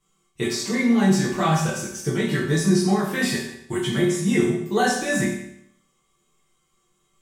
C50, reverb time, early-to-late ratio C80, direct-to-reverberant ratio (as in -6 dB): 3.0 dB, 0.75 s, 6.0 dB, -9.5 dB